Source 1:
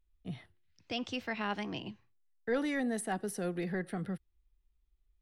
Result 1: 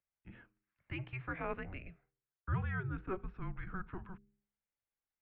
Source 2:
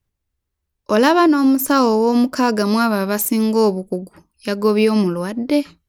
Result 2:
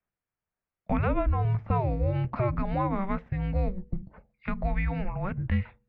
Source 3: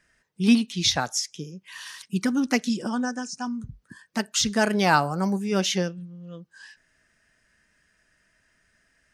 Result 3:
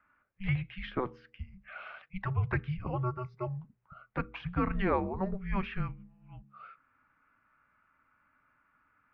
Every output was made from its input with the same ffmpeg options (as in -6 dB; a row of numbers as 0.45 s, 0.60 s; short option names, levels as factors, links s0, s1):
-filter_complex "[0:a]acrossover=split=300|1200[s0][s1][s2];[s0]acompressor=threshold=0.0562:ratio=4[s3];[s1]acompressor=threshold=0.0562:ratio=4[s4];[s2]acompressor=threshold=0.0316:ratio=4[s5];[s3][s4][s5]amix=inputs=3:normalize=0,bandreject=f=86.59:t=h:w=4,bandreject=f=173.18:t=h:w=4,bandreject=f=259.77:t=h:w=4,bandreject=f=346.36:t=h:w=4,bandreject=f=432.95:t=h:w=4,bandreject=f=519.54:t=h:w=4,bandreject=f=606.13:t=h:w=4,bandreject=f=692.72:t=h:w=4,bandreject=f=779.31:t=h:w=4,bandreject=f=865.9:t=h:w=4,highpass=f=260:t=q:w=0.5412,highpass=f=260:t=q:w=1.307,lowpass=f=2800:t=q:w=0.5176,lowpass=f=2800:t=q:w=0.7071,lowpass=f=2800:t=q:w=1.932,afreqshift=-380,volume=0.75"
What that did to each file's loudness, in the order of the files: -5.5 LU, -13.0 LU, -10.5 LU